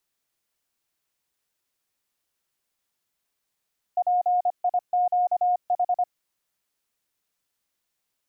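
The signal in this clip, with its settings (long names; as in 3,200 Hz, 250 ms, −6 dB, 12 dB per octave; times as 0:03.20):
Morse code "PIQH" 25 words per minute 719 Hz −18.5 dBFS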